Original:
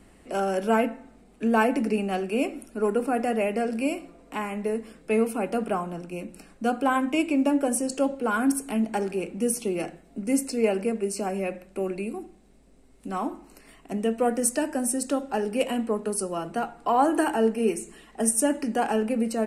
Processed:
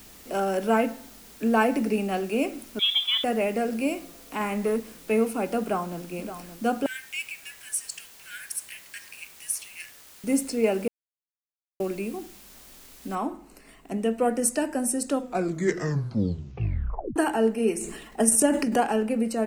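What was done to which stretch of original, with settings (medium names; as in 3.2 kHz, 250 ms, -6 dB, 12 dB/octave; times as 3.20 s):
2.79–3.24 s: frequency inversion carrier 3.7 kHz
4.40–4.80 s: waveshaping leveller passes 1
5.61–6.04 s: echo throw 570 ms, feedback 75%, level -11.5 dB
6.86–10.24 s: steep high-pass 1.6 kHz 96 dB/octave
10.88–11.80 s: mute
13.15 s: noise floor step -50 dB -70 dB
15.12 s: tape stop 2.04 s
17.75–18.83 s: transient shaper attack +5 dB, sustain +10 dB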